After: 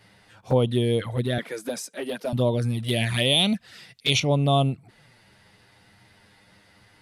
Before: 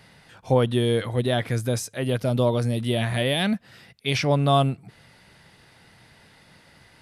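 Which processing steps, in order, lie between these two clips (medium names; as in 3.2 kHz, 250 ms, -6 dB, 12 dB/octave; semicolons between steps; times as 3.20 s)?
1.38–2.33 s: steep high-pass 180 Hz 48 dB/octave; 2.88–4.20 s: peaking EQ 5.8 kHz +10 dB 2.9 oct; touch-sensitive flanger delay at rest 10.7 ms, full sweep at -17 dBFS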